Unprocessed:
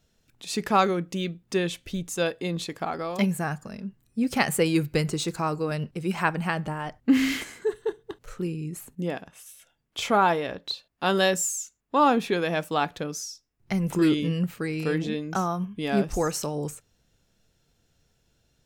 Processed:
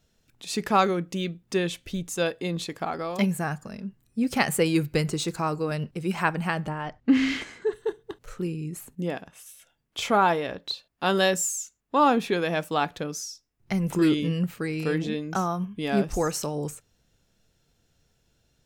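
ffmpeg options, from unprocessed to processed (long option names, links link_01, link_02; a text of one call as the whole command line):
ffmpeg -i in.wav -filter_complex "[0:a]asettb=1/sr,asplit=3[link_01][link_02][link_03];[link_01]atrim=end=6.694[link_04];[link_02]atrim=start=6.69:end=7.73,asetpts=PTS-STARTPTS,afade=type=in:duration=0.004:curve=qsin,afade=type=out:start_time=1.036:duration=0.004:curve=qsin,lowpass=5200[link_05];[link_03]atrim=start=7.726[link_06];[link_04][link_05]acrossfade=duration=0.004:curve1=hsin:curve2=qsin[link_07];[link_07][link_06]acrossfade=duration=0.004:curve1=qsin:curve2=hsin" out.wav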